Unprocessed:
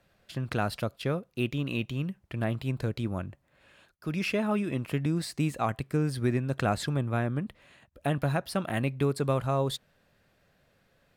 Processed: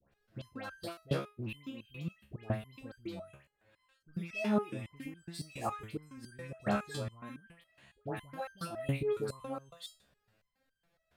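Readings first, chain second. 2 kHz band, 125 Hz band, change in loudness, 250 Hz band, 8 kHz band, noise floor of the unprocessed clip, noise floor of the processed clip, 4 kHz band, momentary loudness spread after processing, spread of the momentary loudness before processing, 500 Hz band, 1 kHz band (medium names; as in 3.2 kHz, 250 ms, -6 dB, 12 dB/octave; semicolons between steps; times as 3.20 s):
-9.0 dB, -12.0 dB, -9.0 dB, -9.0 dB, -9.0 dB, -69 dBFS, -81 dBFS, -9.5 dB, 16 LU, 7 LU, -7.5 dB, -8.0 dB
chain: phase dispersion highs, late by 122 ms, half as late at 1.5 kHz; resonator arpeggio 7.2 Hz 69–1600 Hz; trim +3.5 dB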